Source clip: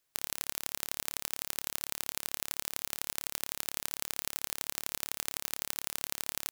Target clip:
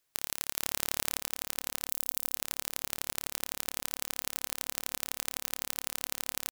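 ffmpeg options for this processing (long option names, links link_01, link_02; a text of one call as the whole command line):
ffmpeg -i in.wav -filter_complex "[0:a]asettb=1/sr,asplit=3[link_01][link_02][link_03];[link_01]atrim=end=1.884[link_04];[link_02]atrim=start=1.88:end=2.35,asetpts=PTS-STARTPTS,afade=type=in:duration=0.004:curve=qsin,afade=type=out:start_time=0.466:duration=0.004:curve=qsin,aderivative[link_05];[link_03]atrim=start=2.346[link_06];[link_04][link_05]acrossfade=duration=0.004:curve1=hsin:curve2=qsin[link_07];[link_07][link_06]acrossfade=duration=0.004:curve1=qsin:curve2=hsin,asplit=2[link_08][link_09];[link_09]adelay=472,lowpass=frequency=810:poles=1,volume=-20dB,asplit=2[link_10][link_11];[link_11]adelay=472,lowpass=frequency=810:poles=1,volume=0.53,asplit=2[link_12][link_13];[link_13]adelay=472,lowpass=frequency=810:poles=1,volume=0.53,asplit=2[link_14][link_15];[link_15]adelay=472,lowpass=frequency=810:poles=1,volume=0.53[link_16];[link_08][link_10][link_12][link_14][link_16]amix=inputs=5:normalize=0,asettb=1/sr,asplit=3[link_17][link_18][link_19];[link_17]atrim=end=0.574[link_20];[link_18]atrim=start=0.57:end=1.19,asetpts=PTS-STARTPTS,afade=type=in:duration=0.004:curve=qsin,afade=type=out:start_time=0.616:duration=0.004:curve=qsin,acontrast=86[link_21];[link_19]atrim=start=1.186[link_22];[link_20][link_21]acrossfade=duration=0.004:curve1=hsin:curve2=qsin[link_23];[link_23][link_22]acrossfade=duration=0.004:curve1=qsin:curve2=hsin,volume=1dB" out.wav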